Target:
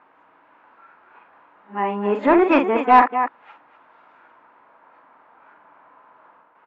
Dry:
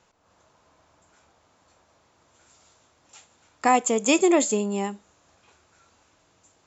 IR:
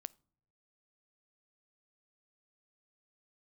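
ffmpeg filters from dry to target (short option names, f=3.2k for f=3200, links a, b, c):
-filter_complex "[0:a]areverse,highpass=160,equalizer=f=270:t=q:w=4:g=6,equalizer=f=940:t=q:w=4:g=8,equalizer=f=1.5k:t=q:w=4:g=-8,lowpass=f=2.6k:w=0.5412,lowpass=f=2.6k:w=1.3066,asplit=2[a][b];[b]aecho=0:1:43.73|247.8:0.447|0.282[c];[a][c]amix=inputs=2:normalize=0,asplit=2[d][e];[e]highpass=f=720:p=1,volume=12dB,asoftclip=type=tanh:threshold=-3.5dB[f];[d][f]amix=inputs=2:normalize=0,lowpass=f=1.8k:p=1,volume=-6dB,equalizer=f=1.5k:w=2.6:g=14"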